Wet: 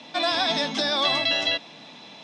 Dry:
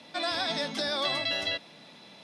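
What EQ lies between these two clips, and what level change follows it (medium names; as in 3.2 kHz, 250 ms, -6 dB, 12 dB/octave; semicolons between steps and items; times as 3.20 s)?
cabinet simulation 150–6900 Hz, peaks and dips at 190 Hz -5 dB, 380 Hz -5 dB, 550 Hz -5 dB, 1.4 kHz -5 dB, 2 kHz -4 dB, 4.6 kHz -6 dB; +9.0 dB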